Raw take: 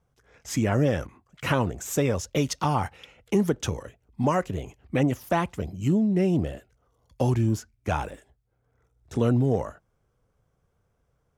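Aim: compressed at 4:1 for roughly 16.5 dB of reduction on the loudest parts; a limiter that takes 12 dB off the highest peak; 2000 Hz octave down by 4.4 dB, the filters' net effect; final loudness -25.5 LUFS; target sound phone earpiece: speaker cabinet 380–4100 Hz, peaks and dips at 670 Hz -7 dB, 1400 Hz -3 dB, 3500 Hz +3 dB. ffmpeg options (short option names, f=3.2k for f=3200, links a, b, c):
-af "equalizer=f=2k:t=o:g=-4.5,acompressor=threshold=-39dB:ratio=4,alimiter=level_in=12dB:limit=-24dB:level=0:latency=1,volume=-12dB,highpass=380,equalizer=f=670:t=q:w=4:g=-7,equalizer=f=1.4k:t=q:w=4:g=-3,equalizer=f=3.5k:t=q:w=4:g=3,lowpass=f=4.1k:w=0.5412,lowpass=f=4.1k:w=1.3066,volume=28dB"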